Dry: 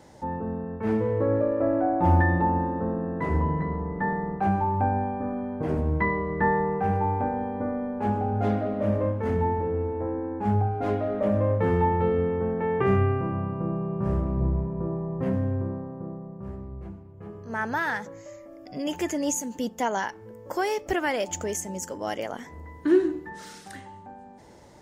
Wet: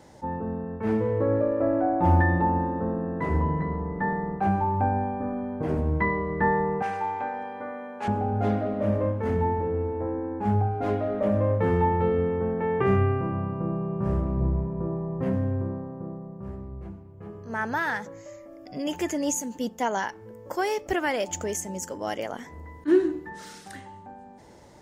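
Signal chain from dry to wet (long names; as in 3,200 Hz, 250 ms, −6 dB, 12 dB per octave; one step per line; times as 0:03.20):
0:06.82–0:08.08: meter weighting curve ITU-R 468
level that may rise only so fast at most 530 dB per second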